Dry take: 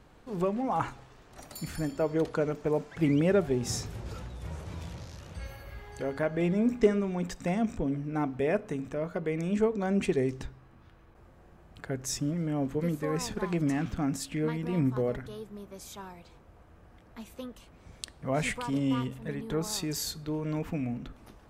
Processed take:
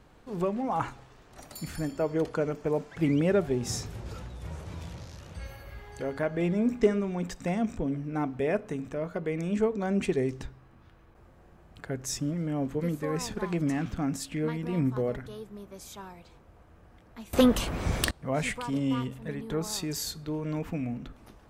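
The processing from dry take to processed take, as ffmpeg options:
-filter_complex "[0:a]asettb=1/sr,asplit=3[a][b][c];[a]atrim=end=1.884[d];[b]atrim=start=1.88:end=2.69,asetpts=PTS-STARTPTS,afade=t=in:d=0.004:c=qsin,afade=t=out:st=0.806:d=0.004:c=qsin,bandreject=f=3.8k:w=11[e];[c]atrim=start=2.686[f];[d][e]acrossfade=d=0.004:c1=hsin:c2=qsin[g];[g][f]acrossfade=d=0.004:c1=qsin:c2=hsin,asettb=1/sr,asplit=3[h][i][j];[h]atrim=end=17.334[k];[i]atrim=start=17.33:end=18.11,asetpts=PTS-STARTPTS,afade=t=in:d=0.004:c=qsin,afade=t=out:st=0.776:d=0.004:c=qsin,aeval=exprs='0.224*sin(PI/2*8.91*val(0)/0.224)':c=same[l];[j]atrim=start=18.106[m];[k][l]acrossfade=d=0.004:c1=hsin:c2=qsin[n];[n][m]acrossfade=d=0.004:c1=qsin:c2=hsin"

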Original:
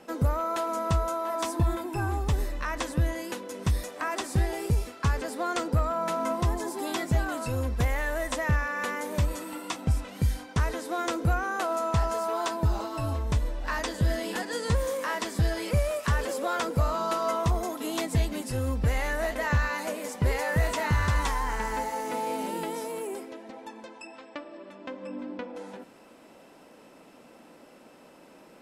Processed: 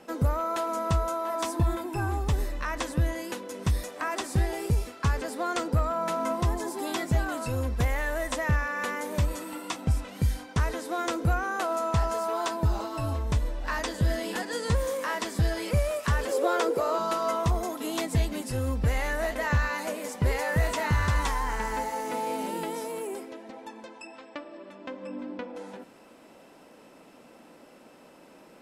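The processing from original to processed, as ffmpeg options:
-filter_complex "[0:a]asettb=1/sr,asplit=3[a][b][c];[a]atrim=end=16.324[d];[b]atrim=start=16.32:end=16.99,asetpts=PTS-STARTPTS,afade=t=in:d=0.004:c=qsin,afade=t=out:st=0.666:d=0.004:c=qsin,highpass=f=400:t=q:w=3.8[e];[c]atrim=start=16.986[f];[d][e]acrossfade=d=0.004:c1=hsin:c2=qsin[g];[g][f]acrossfade=d=0.004:c1=qsin:c2=hsin"

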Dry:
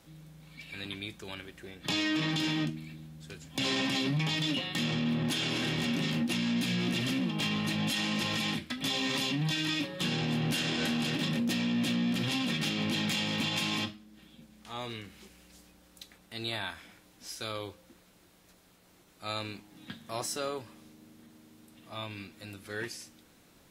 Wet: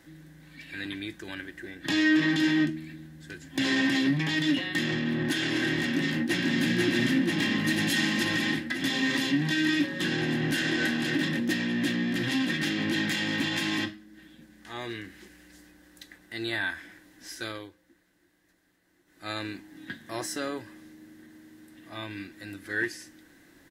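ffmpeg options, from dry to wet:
-filter_complex "[0:a]asplit=2[a][b];[b]afade=t=in:st=5.81:d=0.01,afade=t=out:st=6.58:d=0.01,aecho=0:1:490|980|1470|1960|2450|2940|3430|3920|4410|4900|5390|5880:0.841395|0.673116|0.538493|0.430794|0.344635|0.275708|0.220567|0.176453|0.141163|0.11293|0.0903441|0.0722753[c];[a][c]amix=inputs=2:normalize=0,asettb=1/sr,asplit=3[d][e][f];[d]atrim=end=7.644[g];[e]atrim=start=7.64:end=8.25,asetpts=PTS-STARTPTS,afade=t=in:d=0.004:c=qsin,afade=t=out:st=0.606:d=0.004:c=qsin,highshelf=f=4.3k:g=6[h];[f]atrim=start=8.246[i];[g][h]acrossfade=d=0.004:c1=hsin:c2=qsin[j];[j][i]acrossfade=d=0.004:c1=qsin:c2=hsin,asplit=3[k][l][m];[k]atrim=end=17.7,asetpts=PTS-STARTPTS,afade=t=out:st=17.47:d=0.23:silence=0.298538[n];[l]atrim=start=17.7:end=19.04,asetpts=PTS-STARTPTS,volume=-10.5dB[o];[m]atrim=start=19.04,asetpts=PTS-STARTPTS,afade=t=in:d=0.23:silence=0.298538[p];[n][o][p]concat=n=3:v=0:a=1,superequalizer=6b=2.82:11b=3.55"

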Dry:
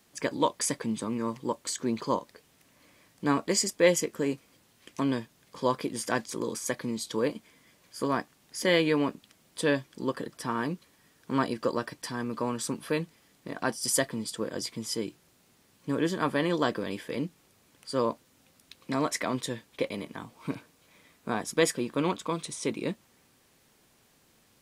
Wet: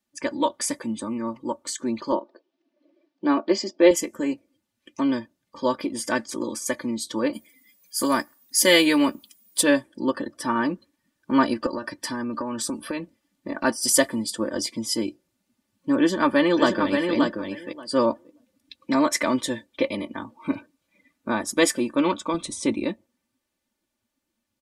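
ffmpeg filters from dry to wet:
-filter_complex "[0:a]asettb=1/sr,asplit=3[a][b][c];[a]atrim=end=2.124[d];[b]atrim=start=2.12:end=3.91,asetpts=PTS-STARTPTS,afade=t=in:d=0.004:c=qsin,afade=t=out:st=1.786:d=0.004:c=qsin,highpass=f=170:w=0.5412,highpass=f=170:w=1.3066,equalizer=f=250:t=q:w=4:g=-3,equalizer=f=360:t=q:w=4:g=9,equalizer=f=690:t=q:w=4:g=6,equalizer=f=2k:t=q:w=4:g=-4,lowpass=f=4.9k:w=0.5412,lowpass=f=4.9k:w=1.3066[e];[c]atrim=start=3.906[f];[d][e]acrossfade=d=0.004:c1=hsin:c2=qsin[g];[g][f]acrossfade=d=0.004:c1=qsin:c2=hsin,asettb=1/sr,asplit=3[h][i][j];[h]atrim=end=7.334[k];[i]atrim=start=7.33:end=9.63,asetpts=PTS-STARTPTS,afade=t=in:d=0.004:c=qsin,afade=t=out:st=2.296:d=0.004:c=qsin,aemphasis=mode=production:type=75kf[l];[j]atrim=start=9.626[m];[k][l]acrossfade=d=0.004:c1=hsin:c2=qsin[n];[n][m]acrossfade=d=0.004:c1=qsin:c2=hsin,asettb=1/sr,asplit=3[o][p][q];[o]atrim=end=11.664[r];[p]atrim=start=11.66:end=13.64,asetpts=PTS-STARTPTS,afade=t=in:d=0.004:c=qsin,afade=t=out:st=1.976:d=0.004:c=qsin,acompressor=threshold=-30dB:ratio=16:attack=3.2:release=140:knee=1:detection=peak[s];[q]atrim=start=13.636[t];[r][s]acrossfade=d=0.004:c1=hsin:c2=qsin[u];[u][t]acrossfade=d=0.004:c1=qsin:c2=hsin,asplit=2[v][w];[w]afade=t=in:st=15.98:d=0.01,afade=t=out:st=17.14:d=0.01,aecho=0:1:580|1160|1740:0.595662|0.0893493|0.0134024[x];[v][x]amix=inputs=2:normalize=0,asettb=1/sr,asplit=3[y][z][aa];[y]atrim=end=22.344[ab];[z]atrim=start=22.34:end=22.84,asetpts=PTS-STARTPTS,afade=t=in:d=0.004:c=qsin,afade=t=out:st=0.496:d=0.004:c=qsin,lowshelf=f=180:g=10[ac];[aa]atrim=start=22.836[ad];[ab][ac]acrossfade=d=0.004:c1=hsin:c2=qsin[ae];[ae][ad]acrossfade=d=0.004:c1=qsin:c2=hsin,afftdn=nr=20:nf=-51,aecho=1:1:3.4:0.77,dynaudnorm=f=770:g=13:m=6dB"

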